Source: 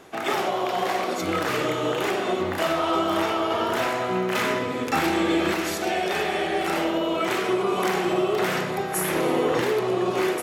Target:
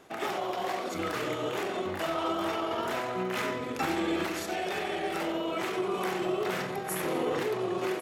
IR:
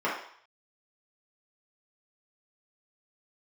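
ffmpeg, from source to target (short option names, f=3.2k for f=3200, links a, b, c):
-af "atempo=1.3,volume=-7dB"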